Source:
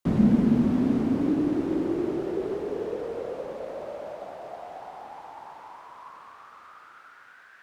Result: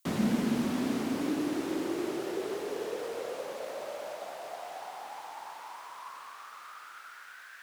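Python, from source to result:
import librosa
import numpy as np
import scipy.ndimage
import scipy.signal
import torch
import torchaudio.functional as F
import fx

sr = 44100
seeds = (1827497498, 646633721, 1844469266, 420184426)

y = fx.tilt_eq(x, sr, slope=4.0)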